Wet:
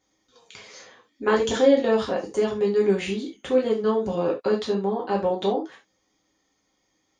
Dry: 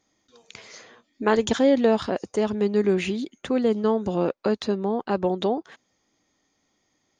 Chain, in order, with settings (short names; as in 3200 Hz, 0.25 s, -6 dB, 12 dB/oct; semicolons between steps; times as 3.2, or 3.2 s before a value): non-linear reverb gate 0.11 s falling, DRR -3 dB; gain -4.5 dB